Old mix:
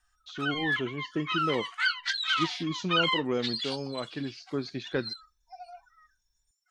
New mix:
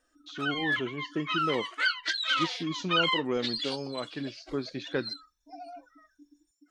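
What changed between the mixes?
background: remove linear-phase brick-wall high-pass 690 Hz
master: add low-shelf EQ 94 Hz −9 dB

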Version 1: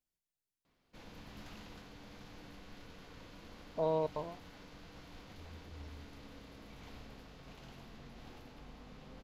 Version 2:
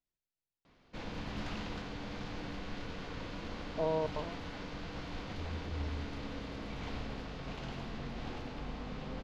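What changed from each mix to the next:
background +11.5 dB
master: add high-frequency loss of the air 86 metres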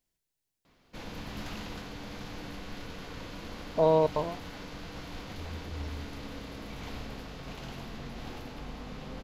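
speech +9.5 dB
master: remove high-frequency loss of the air 86 metres

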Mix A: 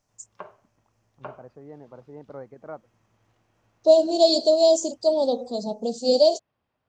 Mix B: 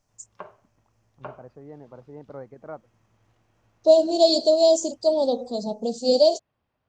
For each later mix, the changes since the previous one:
master: add low-shelf EQ 89 Hz +6.5 dB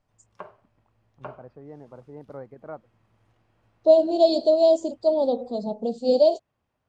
second voice: add parametric band 6,000 Hz −15 dB 0.8 octaves
background: remove low-pass filter 4,900 Hz 24 dB per octave
master: add high-frequency loss of the air 65 metres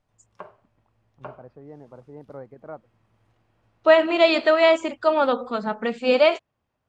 second voice: remove Chebyshev band-stop filter 700–4,300 Hz, order 3

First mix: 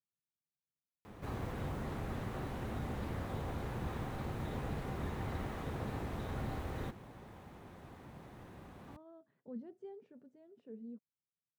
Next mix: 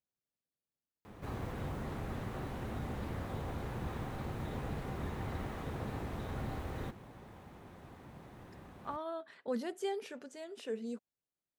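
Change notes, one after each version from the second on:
speech: remove resonant band-pass 140 Hz, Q 1.6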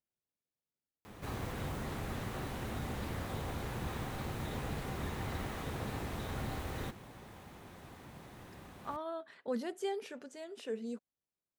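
background: add high-shelf EQ 2,200 Hz +9 dB

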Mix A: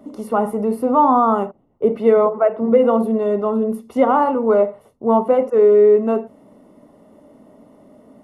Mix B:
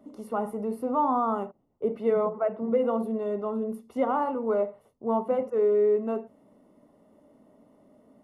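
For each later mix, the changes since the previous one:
first voice −11.0 dB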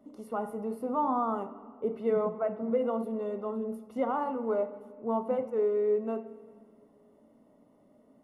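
first voice −5.5 dB
reverb: on, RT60 2.0 s

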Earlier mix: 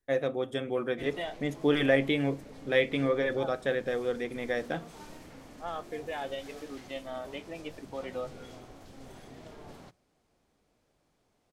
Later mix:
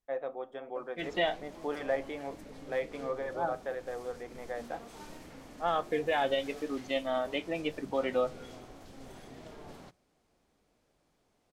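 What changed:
first voice: add resonant band-pass 840 Hz, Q 2
second voice +7.5 dB
master: add parametric band 110 Hz −3 dB 0.67 octaves

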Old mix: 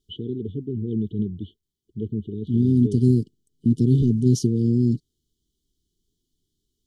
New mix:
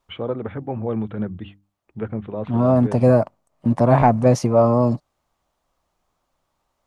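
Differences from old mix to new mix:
first voice: add mains-hum notches 50/100/150/200/250/300 Hz
master: remove linear-phase brick-wall band-stop 450–2,900 Hz

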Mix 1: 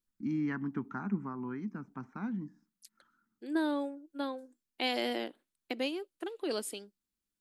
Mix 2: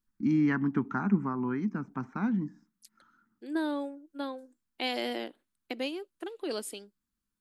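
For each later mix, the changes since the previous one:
first voice +7.5 dB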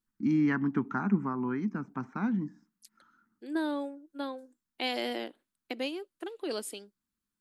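master: add low-shelf EQ 68 Hz −9 dB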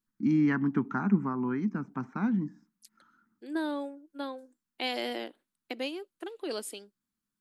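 first voice: add parametric band 130 Hz +5.5 dB 2 octaves
master: add parametric band 63 Hz −7.5 dB 2.2 octaves

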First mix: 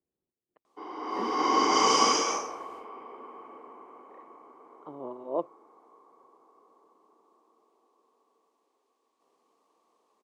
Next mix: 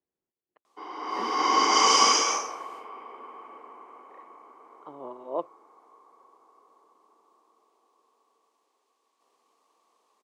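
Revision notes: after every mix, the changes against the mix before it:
master: add tilt shelving filter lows −5.5 dB, about 640 Hz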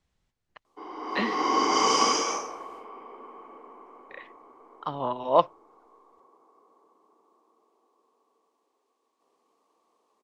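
speech: remove resonant band-pass 360 Hz, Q 2.8
master: add tilt shelving filter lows +5.5 dB, about 640 Hz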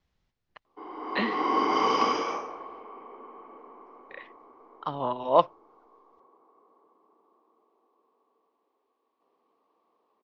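background: add high-frequency loss of the air 230 metres
master: add low-pass filter 5,900 Hz 24 dB per octave

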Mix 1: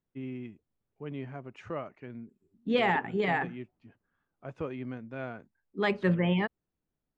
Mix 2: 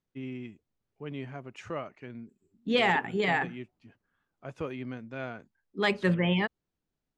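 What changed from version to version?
master: remove low-pass filter 1,900 Hz 6 dB per octave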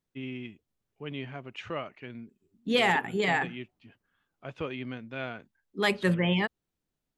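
first voice: add low-pass with resonance 3,300 Hz, resonance Q 2.1
master: remove high-frequency loss of the air 80 metres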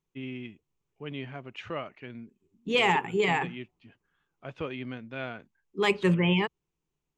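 second voice: add EQ curve with evenly spaced ripples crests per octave 0.73, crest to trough 9 dB
master: add high-shelf EQ 10,000 Hz −10 dB

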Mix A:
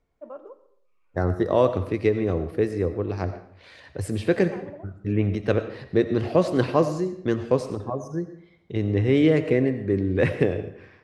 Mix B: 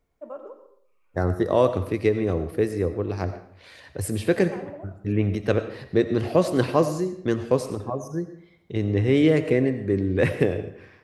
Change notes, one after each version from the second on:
first voice: send +8.0 dB
master: remove high-frequency loss of the air 58 metres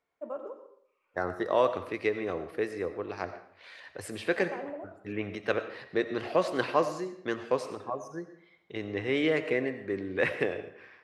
second voice: add resonant band-pass 1,700 Hz, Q 0.59

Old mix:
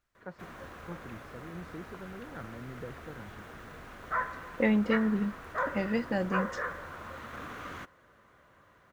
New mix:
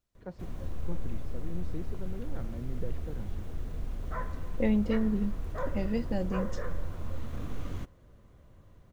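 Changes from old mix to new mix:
first voice +4.0 dB
background: remove high-pass filter 390 Hz 6 dB per octave
master: add parametric band 1,500 Hz −13 dB 1.5 octaves

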